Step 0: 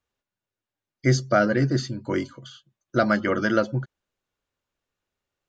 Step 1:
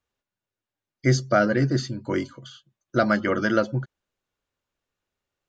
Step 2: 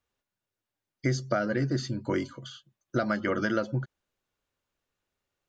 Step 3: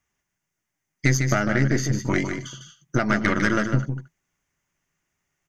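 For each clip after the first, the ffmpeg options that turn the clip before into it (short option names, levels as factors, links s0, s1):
-af anull
-af "acompressor=threshold=0.0631:ratio=5"
-af "equalizer=f=160:t=o:w=0.33:g=10,equalizer=f=500:t=o:w=0.33:g=-11,equalizer=f=2000:t=o:w=0.33:g=9,equalizer=f=4000:t=o:w=0.33:g=-10,equalizer=f=6300:t=o:w=0.33:g=10,aeval=exprs='(tanh(10*val(0)+0.75)-tanh(0.75))/10':c=same,aecho=1:1:151|226:0.447|0.106,volume=2.82"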